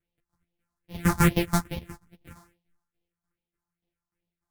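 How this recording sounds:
a buzz of ramps at a fixed pitch in blocks of 256 samples
phaser sweep stages 4, 2.4 Hz, lowest notch 440–1,400 Hz
tremolo saw down 3.4 Hz, depth 70%
a shimmering, thickened sound

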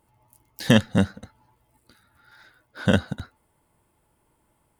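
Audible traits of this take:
background noise floor −69 dBFS
spectral slope −5.5 dB per octave

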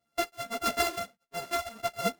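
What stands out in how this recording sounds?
a buzz of ramps at a fixed pitch in blocks of 64 samples
tremolo saw up 0.96 Hz, depth 50%
a shimmering, thickened sound

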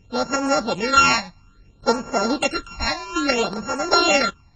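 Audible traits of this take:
a buzz of ramps at a fixed pitch in blocks of 32 samples
phaser sweep stages 8, 0.6 Hz, lowest notch 400–3,600 Hz
AAC

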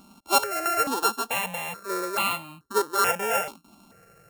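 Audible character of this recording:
a buzz of ramps at a fixed pitch in blocks of 32 samples
notches that jump at a steady rate 2.3 Hz 480–1,600 Hz

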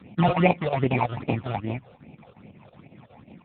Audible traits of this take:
chopped level 5.5 Hz, depth 65%, duty 80%
aliases and images of a low sample rate 1,600 Hz, jitter 0%
phaser sweep stages 8, 2.5 Hz, lowest notch 260–1,500 Hz
AMR narrowband

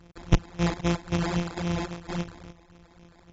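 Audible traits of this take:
a buzz of ramps at a fixed pitch in blocks of 256 samples
phaser sweep stages 6, 3.7 Hz, lowest notch 120–2,600 Hz
aliases and images of a low sample rate 2,900 Hz, jitter 0%
AAC

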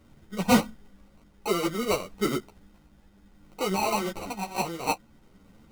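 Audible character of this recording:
aliases and images of a low sample rate 1,700 Hz, jitter 0%
tremolo triangle 0.57 Hz, depth 40%
a shimmering, thickened sound

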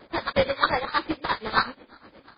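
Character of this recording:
tremolo triangle 8.4 Hz, depth 95%
phaser sweep stages 4, 2.9 Hz, lowest notch 520–1,700 Hz
aliases and images of a low sample rate 2,800 Hz, jitter 20%
MP3

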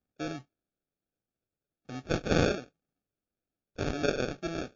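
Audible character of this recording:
phaser sweep stages 4, 1.4 Hz, lowest notch 740–1,500 Hz
aliases and images of a low sample rate 1,000 Hz, jitter 0%
MP3

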